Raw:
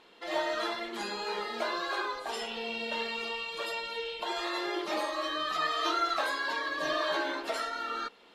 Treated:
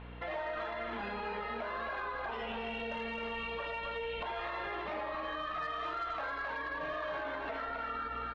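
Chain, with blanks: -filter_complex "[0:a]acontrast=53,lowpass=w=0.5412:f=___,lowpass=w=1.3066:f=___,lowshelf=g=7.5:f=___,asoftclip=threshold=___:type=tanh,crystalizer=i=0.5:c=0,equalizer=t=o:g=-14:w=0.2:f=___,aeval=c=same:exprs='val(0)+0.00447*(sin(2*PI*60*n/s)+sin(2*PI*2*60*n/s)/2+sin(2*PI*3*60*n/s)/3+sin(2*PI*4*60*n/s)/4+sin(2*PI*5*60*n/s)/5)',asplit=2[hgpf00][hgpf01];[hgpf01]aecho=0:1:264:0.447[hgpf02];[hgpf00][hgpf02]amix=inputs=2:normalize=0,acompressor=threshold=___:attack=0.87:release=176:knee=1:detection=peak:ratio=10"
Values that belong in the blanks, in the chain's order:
2600, 2600, 170, -16.5dB, 350, -33dB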